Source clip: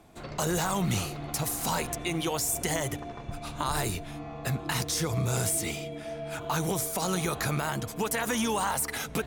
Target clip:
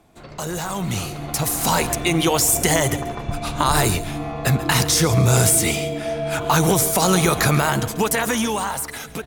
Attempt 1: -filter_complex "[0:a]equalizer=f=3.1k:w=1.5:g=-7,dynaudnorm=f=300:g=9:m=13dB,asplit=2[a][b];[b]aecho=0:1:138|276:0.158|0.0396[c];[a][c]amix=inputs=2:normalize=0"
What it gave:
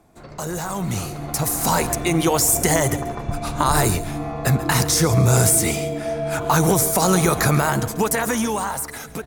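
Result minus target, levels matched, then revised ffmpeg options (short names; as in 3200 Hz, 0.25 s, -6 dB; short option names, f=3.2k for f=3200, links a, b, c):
4000 Hz band -3.5 dB
-filter_complex "[0:a]dynaudnorm=f=300:g=9:m=13dB,asplit=2[a][b];[b]aecho=0:1:138|276:0.158|0.0396[c];[a][c]amix=inputs=2:normalize=0"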